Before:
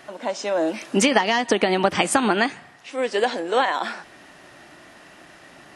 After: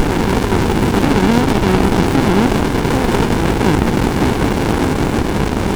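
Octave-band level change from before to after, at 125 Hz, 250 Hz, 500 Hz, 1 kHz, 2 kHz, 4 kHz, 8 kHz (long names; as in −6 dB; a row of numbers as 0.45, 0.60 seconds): +22.0, +13.0, +6.5, +5.5, +4.0, +3.5, +2.5 decibels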